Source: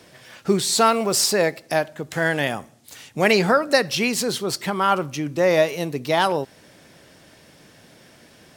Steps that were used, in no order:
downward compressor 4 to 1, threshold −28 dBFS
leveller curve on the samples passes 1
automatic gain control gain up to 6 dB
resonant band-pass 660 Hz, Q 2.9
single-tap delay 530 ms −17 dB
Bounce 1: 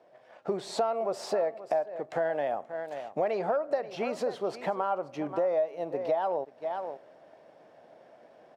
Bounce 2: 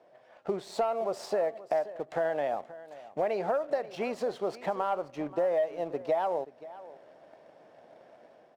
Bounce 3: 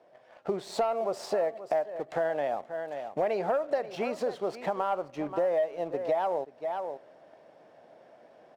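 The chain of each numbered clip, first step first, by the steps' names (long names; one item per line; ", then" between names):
single-tap delay, then leveller curve on the samples, then resonant band-pass, then automatic gain control, then downward compressor
automatic gain control, then resonant band-pass, then leveller curve on the samples, then downward compressor, then single-tap delay
resonant band-pass, then leveller curve on the samples, then single-tap delay, then automatic gain control, then downward compressor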